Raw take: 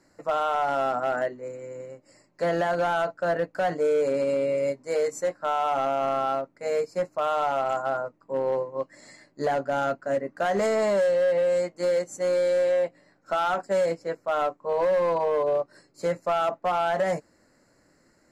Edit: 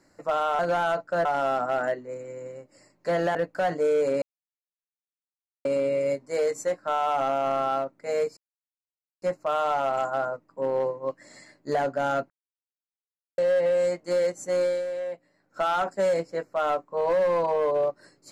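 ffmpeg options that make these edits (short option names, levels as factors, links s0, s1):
-filter_complex "[0:a]asplit=10[s0][s1][s2][s3][s4][s5][s6][s7][s8][s9];[s0]atrim=end=0.592[s10];[s1]atrim=start=2.688:end=3.352[s11];[s2]atrim=start=0.588:end=2.692[s12];[s3]atrim=start=3.348:end=4.22,asetpts=PTS-STARTPTS,afade=t=out:st=0.868:d=0.004:c=hsin,apad=pad_dur=1.43[s13];[s4]atrim=start=4.22:end=6.94,asetpts=PTS-STARTPTS,afade=t=in:d=0.004:c=hsin,afade=t=out:st=2.716:d=0.004:c=hsin,apad=pad_dur=0.85[s14];[s5]atrim=start=6.94:end=10.02,asetpts=PTS-STARTPTS,afade=t=in:d=0.004:c=hsin,afade=t=out:st=3.076:d=0.004:c=hsin[s15];[s6]atrim=start=10.02:end=11.1,asetpts=PTS-STARTPTS,volume=0[s16];[s7]atrim=start=11.1:end=12.57,asetpts=PTS-STARTPTS,afade=t=in:d=0.004:c=hsin,afade=t=out:st=1.24:d=0.23:silence=0.375837[s17];[s8]atrim=start=12.57:end=13.1,asetpts=PTS-STARTPTS,volume=0.376[s18];[s9]atrim=start=13.1,asetpts=PTS-STARTPTS,afade=t=in:d=0.23:silence=0.375837[s19];[s10][s11]acrossfade=d=0.004:c1=hsin:c2=hsin[s20];[s20][s12]acrossfade=d=0.004:c1=hsin:c2=hsin[s21];[s13][s14][s15][s16][s17][s18][s19]concat=n=7:v=0:a=1[s22];[s21][s22]acrossfade=d=0.004:c1=hsin:c2=hsin"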